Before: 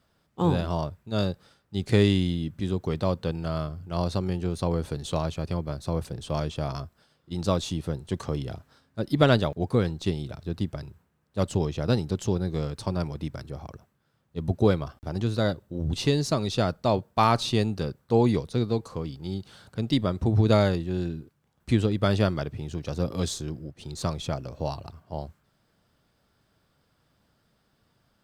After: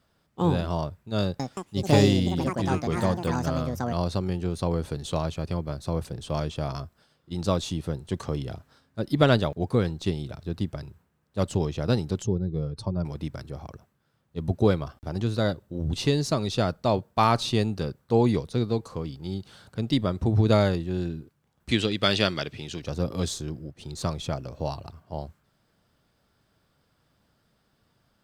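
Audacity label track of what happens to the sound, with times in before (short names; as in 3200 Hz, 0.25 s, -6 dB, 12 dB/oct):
1.220000	4.800000	echoes that change speed 0.175 s, each echo +6 st, echoes 2
12.220000	13.050000	spectral contrast raised exponent 1.5
21.710000	22.820000	weighting filter D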